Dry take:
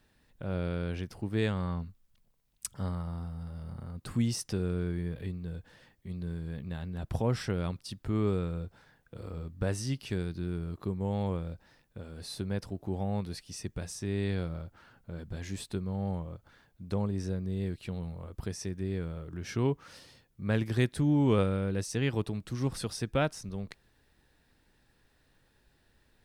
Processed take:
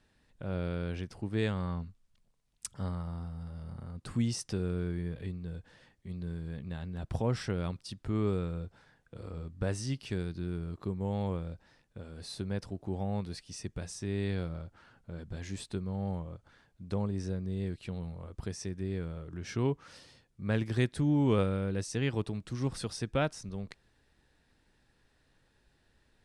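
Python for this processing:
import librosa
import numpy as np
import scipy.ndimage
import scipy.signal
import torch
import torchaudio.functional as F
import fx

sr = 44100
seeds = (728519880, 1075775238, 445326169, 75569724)

y = scipy.signal.sosfilt(scipy.signal.butter(4, 10000.0, 'lowpass', fs=sr, output='sos'), x)
y = y * 10.0 ** (-1.5 / 20.0)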